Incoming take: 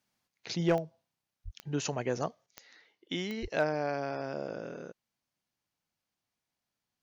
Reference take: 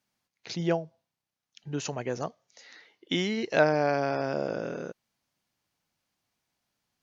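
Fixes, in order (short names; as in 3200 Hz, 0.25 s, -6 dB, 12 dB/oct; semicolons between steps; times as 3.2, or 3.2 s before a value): clip repair -18 dBFS; de-click; 1.44–1.56 HPF 140 Hz 24 dB/oct; 3.41–3.53 HPF 140 Hz 24 dB/oct; gain 0 dB, from 2.46 s +7 dB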